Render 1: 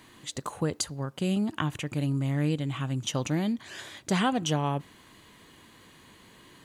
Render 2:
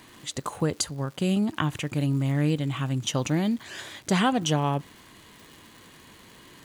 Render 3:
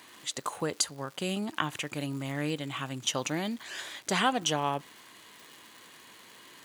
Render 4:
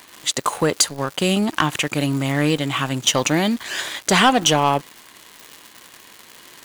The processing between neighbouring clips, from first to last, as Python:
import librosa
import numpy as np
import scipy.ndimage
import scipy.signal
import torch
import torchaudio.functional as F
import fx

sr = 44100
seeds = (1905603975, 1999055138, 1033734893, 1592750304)

y1 = fx.dmg_crackle(x, sr, seeds[0], per_s=300.0, level_db=-44.0)
y1 = y1 * 10.0 ** (3.0 / 20.0)
y2 = fx.highpass(y1, sr, hz=600.0, slope=6)
y3 = fx.leveller(y2, sr, passes=2)
y3 = y3 * 10.0 ** (6.0 / 20.0)